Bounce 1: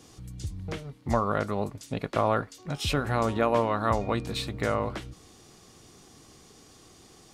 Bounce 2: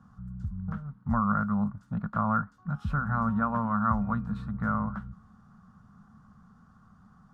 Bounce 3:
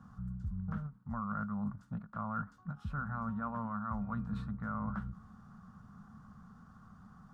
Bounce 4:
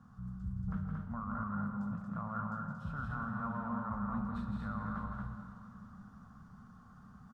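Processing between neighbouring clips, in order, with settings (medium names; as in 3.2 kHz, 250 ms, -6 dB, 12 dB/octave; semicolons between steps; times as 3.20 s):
FFT filter 130 Hz 0 dB, 210 Hz +9 dB, 330 Hz -26 dB, 1.4 kHz +5 dB, 2.2 kHz -25 dB, 10 kHz -30 dB
reverse; compression 12:1, threshold -35 dBFS, peak gain reduction 15 dB; reverse; endings held to a fixed fall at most 250 dB/s; trim +1 dB
on a send: loudspeakers at several distances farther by 57 m -5 dB, 79 m -3 dB; on the sum: plate-style reverb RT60 3 s, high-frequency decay 1×, DRR 5 dB; trim -3.5 dB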